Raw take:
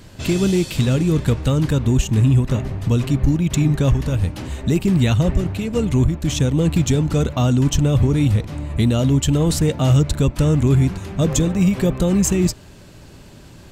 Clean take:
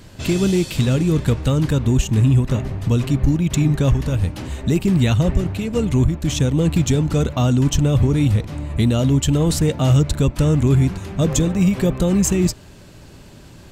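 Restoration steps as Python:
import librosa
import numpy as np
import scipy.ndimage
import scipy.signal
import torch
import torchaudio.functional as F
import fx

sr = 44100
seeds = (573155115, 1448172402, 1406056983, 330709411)

y = fx.fix_declip(x, sr, threshold_db=-6.5)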